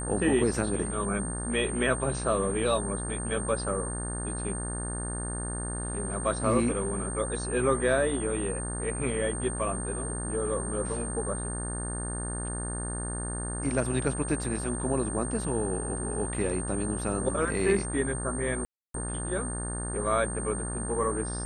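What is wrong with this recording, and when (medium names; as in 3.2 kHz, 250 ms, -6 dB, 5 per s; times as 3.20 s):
buzz 60 Hz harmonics 30 -35 dBFS
whine 8.7 kHz -36 dBFS
18.65–18.94 s: dropout 293 ms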